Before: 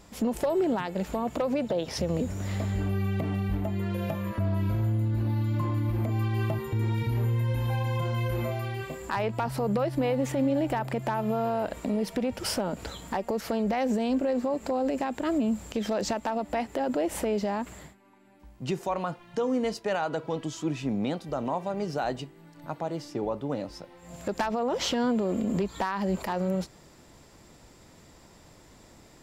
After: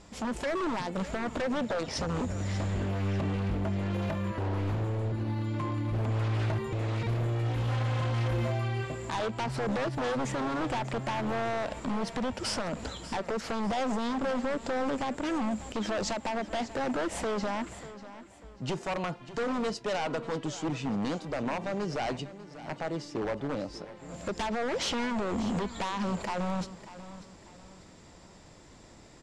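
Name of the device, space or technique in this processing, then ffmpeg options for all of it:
synthesiser wavefolder: -filter_complex "[0:a]asettb=1/sr,asplit=3[link_01][link_02][link_03];[link_01]atrim=end=5.124[link_04];[link_02]atrim=start=5.12:end=5.92,asetpts=PTS-STARTPTS,afade=type=in:duration=0.004:curve=qsin,afade=type=out:start_time=0.796:duration=0.004:curve=qsin,highpass=frequency=190:poles=1[link_05];[link_03]atrim=start=5.916[link_06];[link_04][link_05]acrossfade=duration=0.004:curve1=hsin:curve2=qsin[link_07];[link_07][link_06]acrossfade=duration=0.004:curve1=qsin:curve2=hsin,aeval=exprs='0.0531*(abs(mod(val(0)/0.0531+3,4)-2)-1)':channel_layout=same,lowpass=frequency=8600:width=0.5412,lowpass=frequency=8600:width=1.3066,aecho=1:1:592|1184|1776:0.178|0.0676|0.0257"

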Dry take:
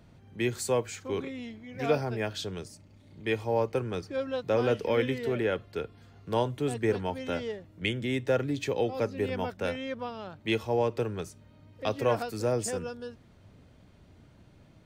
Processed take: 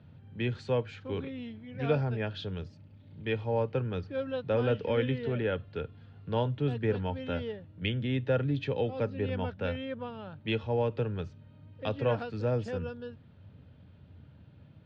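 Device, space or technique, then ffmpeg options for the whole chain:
guitar cabinet: -filter_complex "[0:a]highpass=80,equalizer=frequency=86:width_type=q:width=4:gain=10,equalizer=frequency=140:width_type=q:width=4:gain=6,equalizer=frequency=360:width_type=q:width=4:gain=-7,equalizer=frequency=700:width_type=q:width=4:gain=-6,equalizer=frequency=1100:width_type=q:width=4:gain=-6,equalizer=frequency=2100:width_type=q:width=4:gain=-7,lowpass=frequency=3500:width=0.5412,lowpass=frequency=3500:width=1.3066,asettb=1/sr,asplit=3[link_01][link_02][link_03];[link_01]atrim=end=9.854[link_04];[link_02]atrim=start=9.85:end=10.28,asetpts=PTS-STARTPTS,afade=type=in:duration=0.004:curve=qsin,afade=type=out:start_time=0.426:duration=0.004:curve=qsin,highshelf=frequency=6300:gain=-11[link_05];[link_03]atrim=start=10.276[link_06];[link_04][link_05]acrossfade=duration=0.004:curve1=hsin:curve2=qsin[link_07];[link_07][link_06]acrossfade=duration=0.004:curve1=qsin:curve2=hsin"

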